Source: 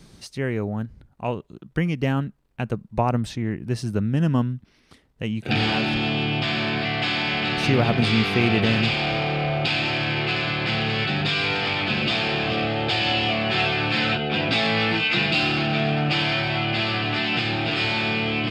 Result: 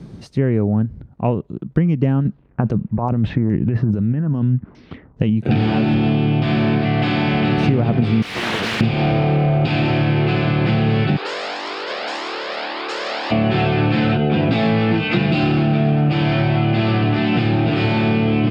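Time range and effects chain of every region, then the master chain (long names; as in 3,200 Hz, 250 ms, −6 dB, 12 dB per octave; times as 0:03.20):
0:02.25–0:05.30: compressor whose output falls as the input rises −29 dBFS + auto-filter low-pass saw down 2.4 Hz 910–6,700 Hz
0:08.22–0:08.81: first difference + leveller curve on the samples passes 5 + highs frequency-modulated by the lows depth 0.6 ms
0:11.16–0:13.30: ceiling on every frequency bin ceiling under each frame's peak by 28 dB + high-pass filter 350 Hz 24 dB per octave + flanger whose copies keep moving one way rising 1.8 Hz
whole clip: Bessel high-pass filter 160 Hz, order 2; spectral tilt −4.5 dB per octave; downward compressor 6 to 1, threshold −19 dBFS; level +6 dB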